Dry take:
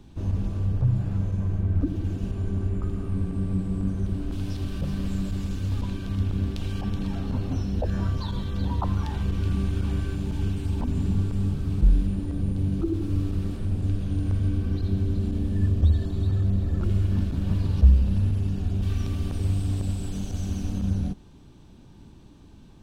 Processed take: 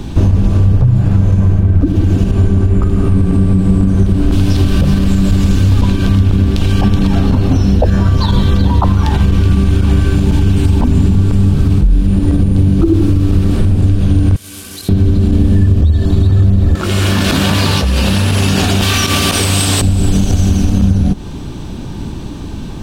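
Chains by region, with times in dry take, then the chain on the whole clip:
14.36–14.89 CVSD 64 kbps + differentiator
16.75–19.82 HPF 1400 Hz 6 dB/oct + doubler 19 ms -10.5 dB + fast leveller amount 100%
whole clip: compressor 5:1, threshold -32 dBFS; maximiser +26.5 dB; gain -1 dB

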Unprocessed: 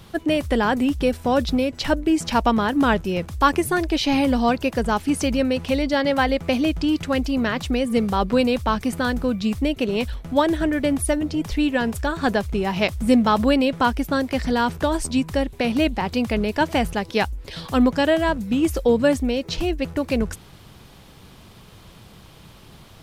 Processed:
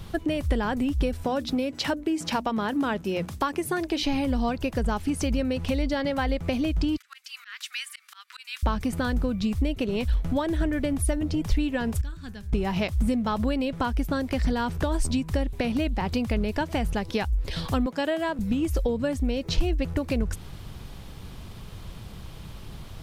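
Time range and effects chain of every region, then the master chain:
1.24–4.03 HPF 170 Hz + notches 60/120/180/240/300 Hz
6.97–8.63 steep high-pass 1400 Hz + auto swell 0.286 s
12.01–12.53 passive tone stack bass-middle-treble 6-0-2 + de-hum 99.87 Hz, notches 28
17.86–18.39 HPF 260 Hz + notch 5900 Hz, Q 17
whole clip: low shelf 160 Hz +4 dB; compressor, threshold -24 dBFS; low shelf 76 Hz +9.5 dB

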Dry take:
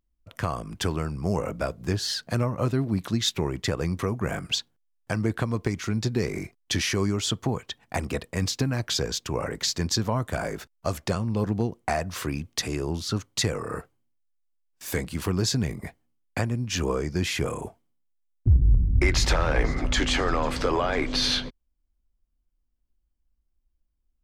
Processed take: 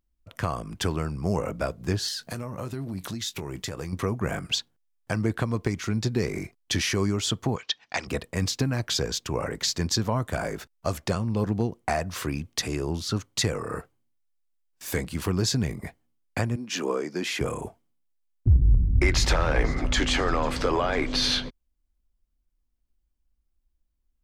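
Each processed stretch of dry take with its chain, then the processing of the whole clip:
2.08–3.93 high shelf 5700 Hz +9.5 dB + compressor 4:1, threshold -30 dBFS + doubler 21 ms -13.5 dB
7.56–8.07 steep low-pass 5700 Hz + tilt +4.5 dB/oct
16.56–17.41 HPF 220 Hz 24 dB/oct + high shelf 5600 Hz -4 dB
whole clip: dry

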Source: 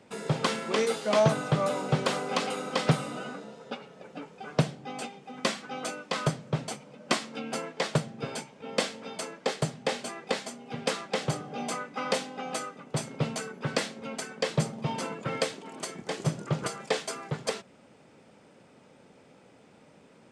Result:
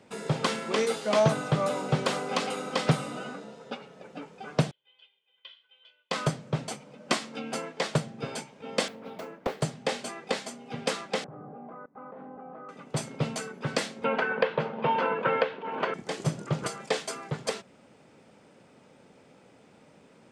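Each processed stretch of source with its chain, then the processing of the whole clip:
4.71–6.11 band-pass 3200 Hz, Q 15 + air absorption 350 m + comb 2 ms, depth 94%
8.88–9.61 median filter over 5 samples + bell 6000 Hz -11.5 dB 2.8 oct + Doppler distortion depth 0.52 ms
11.24–12.69 LPF 1300 Hz 24 dB/oct + level quantiser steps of 22 dB
14.04–15.94 speaker cabinet 200–3200 Hz, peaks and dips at 310 Hz -4 dB, 480 Hz +9 dB, 940 Hz +9 dB, 1500 Hz +9 dB, 2700 Hz +4 dB + three-band squash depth 100%
whole clip: dry

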